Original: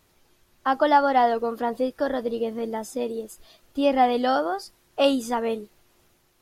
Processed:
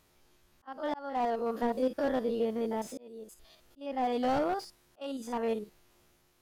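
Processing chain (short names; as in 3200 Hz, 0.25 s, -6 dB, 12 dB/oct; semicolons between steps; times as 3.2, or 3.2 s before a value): stepped spectrum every 50 ms; auto swell 0.667 s; slew limiter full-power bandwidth 48 Hz; gain -2.5 dB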